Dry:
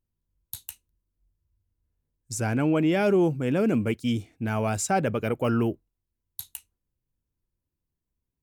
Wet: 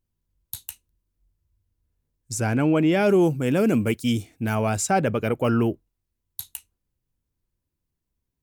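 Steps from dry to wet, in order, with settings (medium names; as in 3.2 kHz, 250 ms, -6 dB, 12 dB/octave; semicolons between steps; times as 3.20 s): 3.09–4.55 s: treble shelf 6.2 kHz +11 dB; trim +3 dB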